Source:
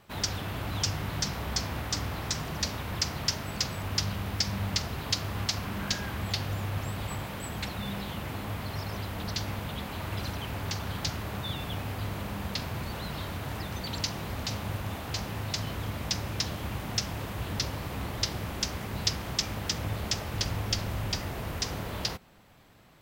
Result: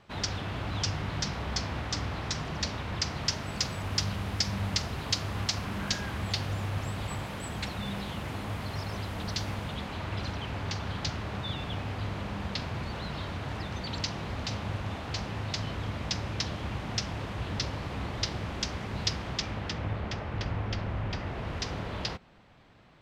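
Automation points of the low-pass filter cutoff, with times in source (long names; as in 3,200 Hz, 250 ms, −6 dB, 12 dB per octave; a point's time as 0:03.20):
0:02.97 5,600 Hz
0:03.69 9,500 Hz
0:09.48 9,500 Hz
0:10.07 5,400 Hz
0:19.15 5,400 Hz
0:20.00 2,400 Hz
0:21.08 2,400 Hz
0:21.57 4,400 Hz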